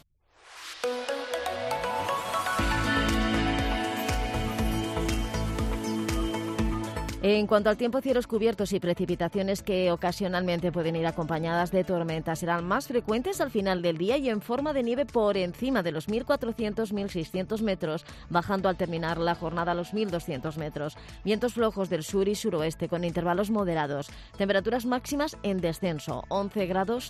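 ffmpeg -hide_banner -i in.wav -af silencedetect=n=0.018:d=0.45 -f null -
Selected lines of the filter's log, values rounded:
silence_start: 0.00
silence_end: 0.59 | silence_duration: 0.59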